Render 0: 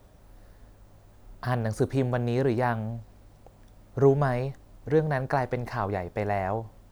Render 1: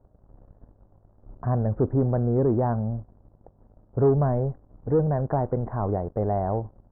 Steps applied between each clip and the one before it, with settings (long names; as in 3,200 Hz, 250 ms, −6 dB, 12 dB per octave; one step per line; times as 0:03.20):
leveller curve on the samples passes 2
Gaussian smoothing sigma 8.4 samples
level −2 dB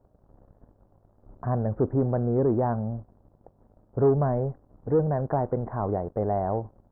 low-shelf EQ 120 Hz −6.5 dB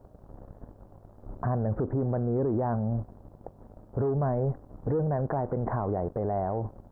downward compressor, threshold −27 dBFS, peak gain reduction 10 dB
brickwall limiter −30 dBFS, peak gain reduction 11 dB
level +9 dB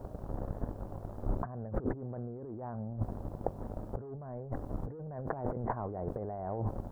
compressor whose output falls as the input rises −35 dBFS, ratio −0.5
level +1 dB